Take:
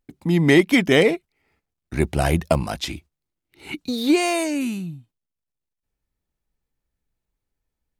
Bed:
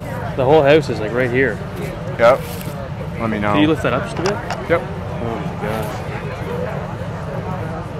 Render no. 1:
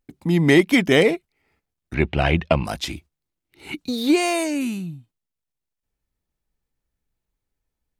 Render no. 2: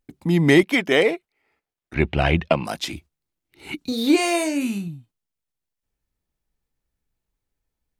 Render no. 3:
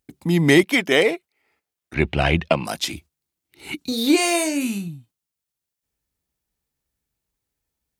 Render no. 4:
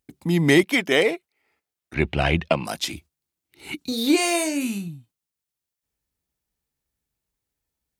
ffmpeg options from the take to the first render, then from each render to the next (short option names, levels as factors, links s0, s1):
-filter_complex "[0:a]asettb=1/sr,asplit=3[s0][s1][s2];[s0]atrim=end=1.944[s3];[s1]atrim=start=1.94:end=2.65,asetpts=PTS-STARTPTS,afade=t=in:d=0.004:c=qsin,afade=t=out:st=0.706:d=0.004:c=qsin,lowpass=f=2800:t=q:w=2.4[s4];[s2]atrim=start=2.646[s5];[s3][s4]acrossfade=d=0.004:c1=hsin:c2=qsin[s6];[s6][s5]acrossfade=d=0.004:c1=qsin:c2=hsin"
-filter_complex "[0:a]asettb=1/sr,asplit=3[s0][s1][s2];[s0]atrim=end=0.634[s3];[s1]atrim=start=0.63:end=1.96,asetpts=PTS-STARTPTS,afade=t=in:d=0.004:c=qsin,afade=t=out:st=1.326:d=0.004:c=qsin,bass=f=250:g=-13,treble=f=4000:g=-5[s4];[s2]atrim=start=1.956[s5];[s3][s4]acrossfade=d=0.004:c1=hsin:c2=qsin[s6];[s6][s5]acrossfade=d=0.004:c1=qsin:c2=hsin,asettb=1/sr,asplit=3[s7][s8][s9];[s7]atrim=end=2.484[s10];[s8]atrim=start=2.48:end=2.93,asetpts=PTS-STARTPTS,afade=t=in:d=0.004:c=qsin,afade=t=out:st=0.446:d=0.004:c=qsin,highpass=170[s11];[s9]atrim=start=2.926[s12];[s10][s11]acrossfade=d=0.004:c1=hsin:c2=qsin[s13];[s13][s12]acrossfade=d=0.004:c1=qsin:c2=hsin,asettb=1/sr,asplit=3[s14][s15][s16];[s14]atrim=end=3.784[s17];[s15]atrim=start=3.78:end=4.88,asetpts=PTS-STARTPTS,afade=t=in:d=0.004:c=qsin,afade=t=out:st=1.096:d=0.004:c=qsin,asplit=2[s18][s19];[s19]adelay=35,volume=0.398[s20];[s18][s20]amix=inputs=2:normalize=0,atrim=end_sample=48510[s21];[s16]atrim=start=4.876[s22];[s17][s21]acrossfade=d=0.004:c1=hsin:c2=qsin[s23];[s23][s22]acrossfade=d=0.004:c1=qsin:c2=hsin"
-af "highpass=51,highshelf=f=4000:g=7"
-af "volume=0.794"